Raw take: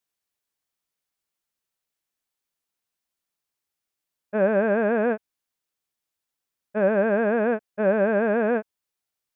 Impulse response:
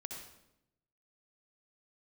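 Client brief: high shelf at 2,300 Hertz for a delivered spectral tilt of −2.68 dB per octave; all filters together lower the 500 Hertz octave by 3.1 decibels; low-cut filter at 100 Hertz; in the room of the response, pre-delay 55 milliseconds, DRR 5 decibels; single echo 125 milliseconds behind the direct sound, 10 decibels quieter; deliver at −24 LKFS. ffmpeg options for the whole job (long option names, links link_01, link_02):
-filter_complex "[0:a]highpass=100,equalizer=frequency=500:width_type=o:gain=-3.5,highshelf=frequency=2300:gain=-4.5,aecho=1:1:125:0.316,asplit=2[link_01][link_02];[1:a]atrim=start_sample=2205,adelay=55[link_03];[link_02][link_03]afir=irnorm=-1:irlink=0,volume=-2.5dB[link_04];[link_01][link_04]amix=inputs=2:normalize=0,volume=-0.5dB"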